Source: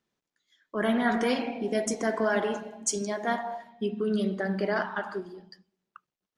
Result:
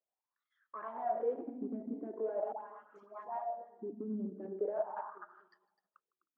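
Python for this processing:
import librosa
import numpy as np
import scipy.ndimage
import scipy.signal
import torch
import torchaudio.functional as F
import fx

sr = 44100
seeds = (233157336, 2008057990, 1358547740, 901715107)

y = x + 10.0 ** (-12.5 / 20.0) * np.pad(x, (int(255 * sr / 1000.0), 0))[:len(x)]
y = fx.level_steps(y, sr, step_db=10)
y = fx.low_shelf(y, sr, hz=150.0, db=-11.5)
y = y * (1.0 - 0.38 / 2.0 + 0.38 / 2.0 * np.cos(2.0 * np.pi * 9.2 * (np.arange(len(y)) / sr)))
y = fx.high_shelf(y, sr, hz=3100.0, db=11.0, at=(0.88, 1.34))
y = fx.cheby_harmonics(y, sr, harmonics=(5, 8), levels_db=(-9, -25), full_scale_db=-19.5)
y = fx.env_lowpass_down(y, sr, base_hz=1200.0, full_db=-31.5)
y = fx.dispersion(y, sr, late='highs', ms=96.0, hz=1100.0, at=(2.52, 3.9))
y = fx.wah_lfo(y, sr, hz=0.42, low_hz=250.0, high_hz=1300.0, q=7.6)
y = fx.echo_warbled(y, sr, ms=155, feedback_pct=36, rate_hz=2.8, cents=81, wet_db=-22.5)
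y = y * 10.0 ** (1.0 / 20.0)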